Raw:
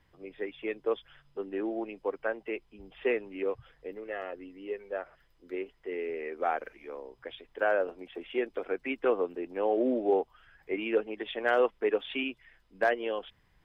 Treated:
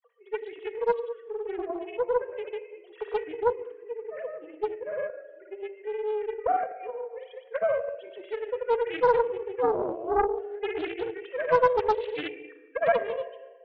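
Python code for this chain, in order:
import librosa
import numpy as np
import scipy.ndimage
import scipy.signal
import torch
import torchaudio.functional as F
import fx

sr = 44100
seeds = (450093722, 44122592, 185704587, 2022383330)

p1 = fx.sine_speech(x, sr)
p2 = fx.dynamic_eq(p1, sr, hz=1200.0, q=0.95, threshold_db=-45.0, ratio=4.0, max_db=-5)
p3 = p2 + fx.echo_single(p2, sr, ms=140, db=-15.5, dry=0)
p4 = fx.granulator(p3, sr, seeds[0], grain_ms=100.0, per_s=20.0, spray_ms=100.0, spread_st=0)
p5 = scipy.signal.sosfilt(scipy.signal.butter(2, 440.0, 'highpass', fs=sr, output='sos'), p4)
p6 = fx.high_shelf(p5, sr, hz=2500.0, db=-8.5)
p7 = p6 + 0.31 * np.pad(p6, (int(4.2 * sr / 1000.0), 0))[:len(p6)]
p8 = fx.room_shoebox(p7, sr, seeds[1], volume_m3=1400.0, walls='mixed', distance_m=0.63)
p9 = fx.doppler_dist(p8, sr, depth_ms=0.64)
y = p9 * librosa.db_to_amplitude(8.0)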